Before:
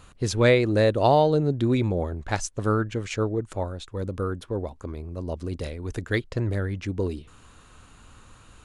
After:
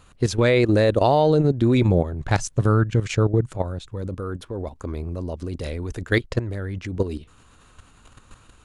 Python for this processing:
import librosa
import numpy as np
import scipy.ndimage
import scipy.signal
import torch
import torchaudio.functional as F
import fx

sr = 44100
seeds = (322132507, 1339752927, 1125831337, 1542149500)

y = fx.peak_eq(x, sr, hz=130.0, db=11.5, octaves=0.56, at=(1.87, 4.01), fade=0.02)
y = fx.level_steps(y, sr, step_db=12)
y = y * 10.0 ** (7.5 / 20.0)